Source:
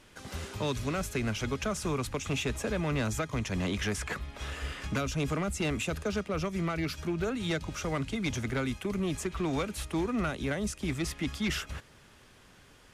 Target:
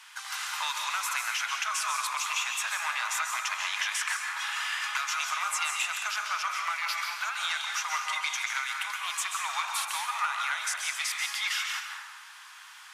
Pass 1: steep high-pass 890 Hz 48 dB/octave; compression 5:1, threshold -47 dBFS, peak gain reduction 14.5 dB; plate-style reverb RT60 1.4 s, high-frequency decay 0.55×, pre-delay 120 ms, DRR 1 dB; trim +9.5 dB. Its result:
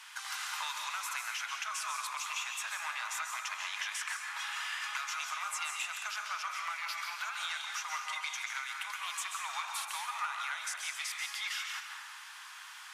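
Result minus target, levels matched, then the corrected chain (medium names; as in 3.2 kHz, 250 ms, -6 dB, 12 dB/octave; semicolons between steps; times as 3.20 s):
compression: peak gain reduction +7 dB
steep high-pass 890 Hz 48 dB/octave; compression 5:1, threshold -38 dBFS, peak gain reduction 7 dB; plate-style reverb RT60 1.4 s, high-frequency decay 0.55×, pre-delay 120 ms, DRR 1 dB; trim +9.5 dB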